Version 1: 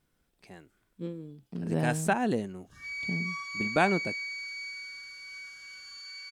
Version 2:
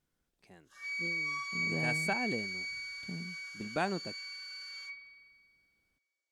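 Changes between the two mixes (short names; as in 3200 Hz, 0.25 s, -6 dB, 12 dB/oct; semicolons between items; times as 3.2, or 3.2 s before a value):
speech -8.0 dB; background: entry -2.00 s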